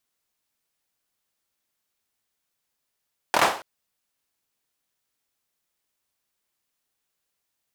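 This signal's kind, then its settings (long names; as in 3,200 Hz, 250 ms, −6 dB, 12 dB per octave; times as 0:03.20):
synth clap length 0.28 s, apart 25 ms, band 790 Hz, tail 0.41 s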